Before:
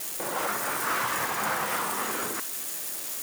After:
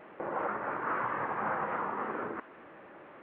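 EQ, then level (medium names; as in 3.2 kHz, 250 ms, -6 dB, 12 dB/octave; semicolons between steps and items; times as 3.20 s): Gaussian low-pass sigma 5.3 samples; bass shelf 220 Hz -5 dB; band-stop 700 Hz, Q 22; 0.0 dB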